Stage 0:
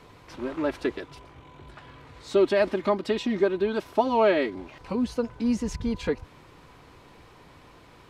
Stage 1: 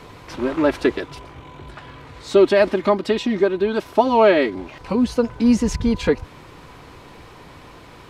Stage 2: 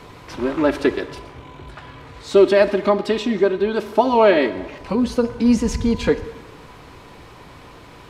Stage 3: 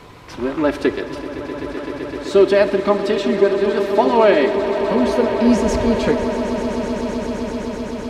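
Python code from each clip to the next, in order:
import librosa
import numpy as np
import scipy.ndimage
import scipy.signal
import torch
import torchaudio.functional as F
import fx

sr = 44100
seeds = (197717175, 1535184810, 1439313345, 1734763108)

y1 = fx.rider(x, sr, range_db=10, speed_s=2.0)
y1 = y1 * 10.0 ** (6.5 / 20.0)
y2 = fx.rev_plate(y1, sr, seeds[0], rt60_s=1.2, hf_ratio=0.85, predelay_ms=0, drr_db=11.5)
y3 = fx.echo_swell(y2, sr, ms=128, loudest=8, wet_db=-14.5)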